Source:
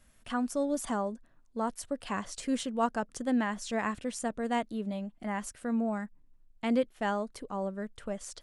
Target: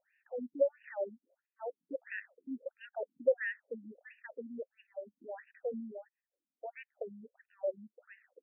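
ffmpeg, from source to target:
-filter_complex "[0:a]asplit=3[a][b][c];[a]bandpass=f=530:t=q:w=8,volume=0dB[d];[b]bandpass=f=1.84k:t=q:w=8,volume=-6dB[e];[c]bandpass=f=2.48k:t=q:w=8,volume=-9dB[f];[d][e][f]amix=inputs=3:normalize=0,afftfilt=real='re*between(b*sr/1024,210*pow(2100/210,0.5+0.5*sin(2*PI*1.5*pts/sr))/1.41,210*pow(2100/210,0.5+0.5*sin(2*PI*1.5*pts/sr))*1.41)':imag='im*between(b*sr/1024,210*pow(2100/210,0.5+0.5*sin(2*PI*1.5*pts/sr))/1.41,210*pow(2100/210,0.5+0.5*sin(2*PI*1.5*pts/sr))*1.41)':win_size=1024:overlap=0.75,volume=10.5dB"

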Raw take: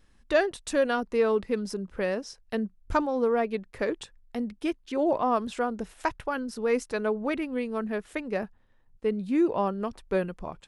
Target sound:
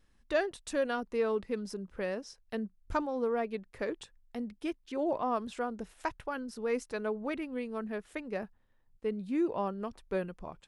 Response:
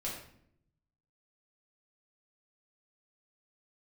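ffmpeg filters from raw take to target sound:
-af "volume=-6.5dB"

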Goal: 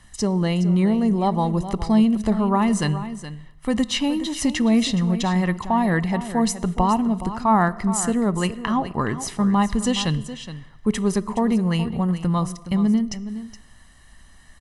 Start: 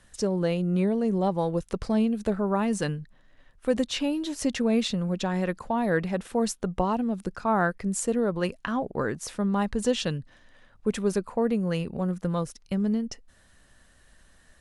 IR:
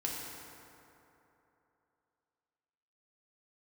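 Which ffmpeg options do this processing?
-filter_complex "[0:a]aecho=1:1:1:0.6,aecho=1:1:419:0.237,asplit=2[a][b];[1:a]atrim=start_sample=2205,afade=t=out:st=0.43:d=0.01,atrim=end_sample=19404,asetrate=61740,aresample=44100[c];[b][c]afir=irnorm=-1:irlink=0,volume=-15dB[d];[a][d]amix=inputs=2:normalize=0,volume=4dB"

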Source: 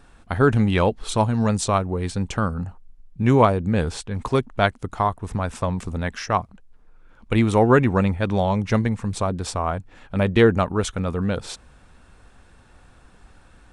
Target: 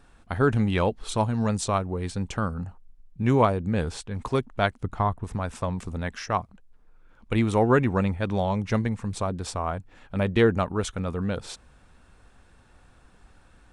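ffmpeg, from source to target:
-filter_complex "[0:a]asettb=1/sr,asplit=3[a][b][c];[a]atrim=end=4.804[d];[b]atrim=start=4.8:end=5.24,asetpts=PTS-STARTPTS,afade=t=in:d=0.004:c=qsin,afade=t=out:st=0.436:d=0.004:c=qsin,bass=f=250:g=6,treble=f=4k:g=-7[e];[c]atrim=start=5.236[f];[d][e]acrossfade=d=0.004:c1=hsin:c2=qsin[g];[g][f]acrossfade=d=0.004:c1=qsin:c2=hsin,volume=-4.5dB"

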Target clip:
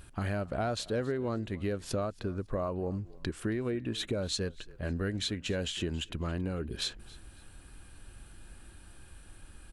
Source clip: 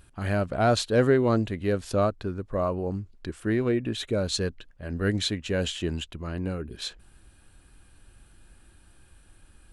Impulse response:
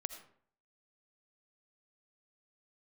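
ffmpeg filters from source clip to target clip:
-filter_complex "[0:a]acompressor=threshold=-34dB:ratio=6,asplit=2[a][b];[b]asplit=2[c][d];[c]adelay=275,afreqshift=-33,volume=-21.5dB[e];[d]adelay=550,afreqshift=-66,volume=-31.4dB[f];[e][f]amix=inputs=2:normalize=0[g];[a][g]amix=inputs=2:normalize=0,volume=3.5dB"

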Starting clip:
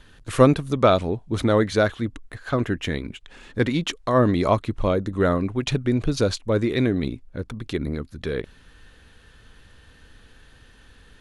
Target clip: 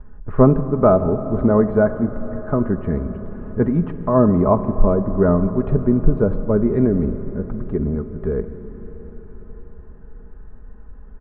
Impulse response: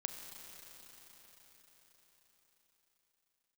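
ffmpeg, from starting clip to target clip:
-filter_complex "[0:a]lowpass=f=1.2k:w=0.5412,lowpass=f=1.2k:w=1.3066,lowshelf=f=130:g=5,aecho=1:1:4.8:0.53,asplit=2[a][b];[1:a]atrim=start_sample=2205,lowshelf=f=130:g=9.5[c];[b][c]afir=irnorm=-1:irlink=0,volume=0.5dB[d];[a][d]amix=inputs=2:normalize=0,volume=-3.5dB"

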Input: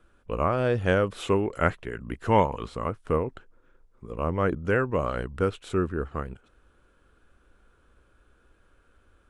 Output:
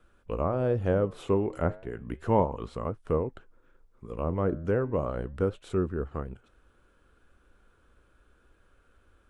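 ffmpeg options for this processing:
-filter_complex "[0:a]acrossover=split=1000[a][b];[b]acompressor=threshold=-46dB:ratio=5[c];[a][c]amix=inputs=2:normalize=0,flanger=delay=1.5:depth=9.6:regen=-88:speed=0.34:shape=sinusoidal,volume=3dB"

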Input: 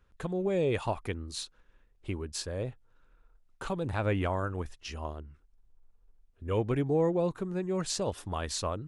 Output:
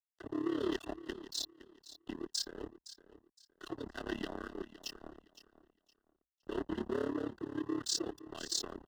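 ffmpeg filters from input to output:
-filter_complex "[0:a]afftfilt=real='re*gte(hypot(re,im),0.00794)':imag='im*gte(hypot(re,im),0.00794)':win_size=1024:overlap=0.75,equalizer=f=1k:t=o:w=0.91:g=-11.5,aecho=1:1:2.5:0.69,asplit=2[a][b];[b]asetrate=55563,aresample=44100,atempo=0.793701,volume=-11dB[c];[a][c]amix=inputs=2:normalize=0,asoftclip=type=tanh:threshold=-26.5dB,highpass=300,equalizer=f=320:t=q:w=4:g=-3,equalizer=f=550:t=q:w=4:g=-9,equalizer=f=870:t=q:w=4:g=-8,equalizer=f=1.3k:t=q:w=4:g=-4,equalizer=f=2.4k:t=q:w=4:g=-4,equalizer=f=5.1k:t=q:w=4:g=3,lowpass=f=7.7k:w=0.5412,lowpass=f=7.7k:w=1.3066,tremolo=f=35:d=0.788,aeval=exprs='sgn(val(0))*max(abs(val(0))-0.00251,0)':c=same,afreqshift=-60,asuperstop=centerf=2300:order=8:qfactor=3.9,aecho=1:1:514|1028|1542:0.168|0.042|0.0105,volume=5dB"

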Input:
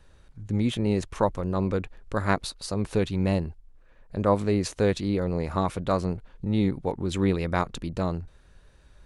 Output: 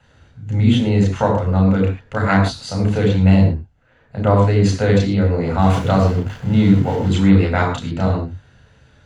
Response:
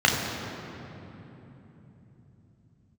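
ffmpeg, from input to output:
-filter_complex "[0:a]asettb=1/sr,asplit=3[a][b][c];[a]atrim=end=5.594[d];[b]atrim=start=5.59:end=7.08,asetpts=PTS-STARTPTS,afade=t=in:d=0.004:c=qsin,afade=t=out:st=1.486:d=0.004:c=qsin,aeval=exprs='val(0)+0.5*0.0178*sgn(val(0))':c=same[e];[c]atrim=start=7.076[f];[d][e]acrossfade=d=0.004:c1=hsin:c2=qsin[g];[g][f]acrossfade=d=0.004:c1=qsin:c2=hsin[h];[1:a]atrim=start_sample=2205,afade=t=out:st=0.2:d=0.01,atrim=end_sample=9261[i];[h][i]afir=irnorm=-1:irlink=0,volume=-8.5dB"

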